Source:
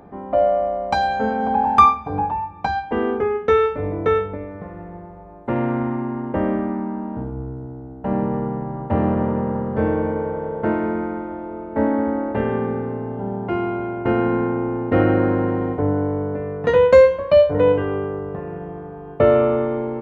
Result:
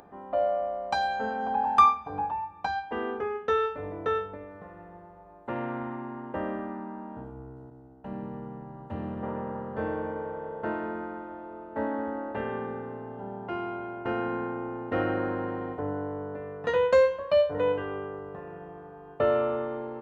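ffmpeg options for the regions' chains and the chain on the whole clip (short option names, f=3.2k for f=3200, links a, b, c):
-filter_complex "[0:a]asettb=1/sr,asplit=3[a][b][c];[a]atrim=end=7.704[d];[b]atrim=start=7.7:end=9.23,asetpts=PTS-STARTPTS,afade=t=in:d=0.004:c=qsin,afade=t=out:st=1.526:d=0.004:c=qsin,agate=range=-33dB:threshold=-34dB:ratio=3:release=100:detection=peak,acrossover=split=320|3000[e][f][g];[f]acompressor=threshold=-48dB:ratio=1.5:attack=3.2:release=140:knee=2.83:detection=peak[h];[e][h][g]amix=inputs=3:normalize=0[i];[c]atrim=start=9.226[j];[d][i]acrossfade=d=0.004:c1=hsin:c2=qsin[k];[k][j]acrossfade=d=0.004:c1=qsin:c2=hsin,lowshelf=f=480:g=-11,bandreject=f=2.2k:w=8.4,acompressor=mode=upward:threshold=-44dB:ratio=2.5,volume=-5dB"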